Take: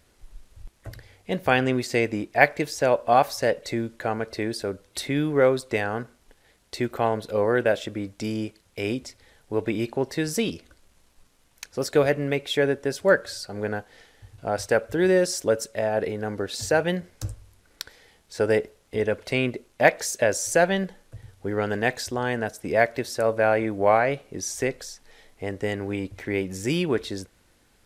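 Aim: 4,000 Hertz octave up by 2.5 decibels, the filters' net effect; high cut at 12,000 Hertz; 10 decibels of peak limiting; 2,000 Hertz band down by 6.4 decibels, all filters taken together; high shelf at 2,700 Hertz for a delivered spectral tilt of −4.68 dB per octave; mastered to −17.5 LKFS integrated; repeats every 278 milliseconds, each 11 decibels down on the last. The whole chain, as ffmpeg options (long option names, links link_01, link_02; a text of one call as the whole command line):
ffmpeg -i in.wav -af "lowpass=12000,equalizer=frequency=2000:width_type=o:gain=-9,highshelf=frequency=2700:gain=-3.5,equalizer=frequency=4000:width_type=o:gain=9,alimiter=limit=-14.5dB:level=0:latency=1,aecho=1:1:278|556|834:0.282|0.0789|0.0221,volume=10dB" out.wav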